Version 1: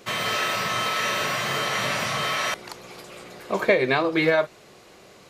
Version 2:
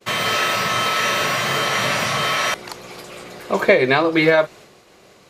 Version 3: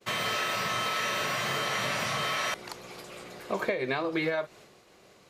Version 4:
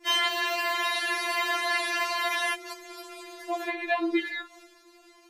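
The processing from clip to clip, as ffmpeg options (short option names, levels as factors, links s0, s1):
-af "agate=range=0.0224:threshold=0.00631:ratio=3:detection=peak,volume=1.88"
-af "acompressor=threshold=0.126:ratio=6,volume=0.398"
-af "afftfilt=real='re*4*eq(mod(b,16),0)':imag='im*4*eq(mod(b,16),0)':win_size=2048:overlap=0.75,volume=1.68"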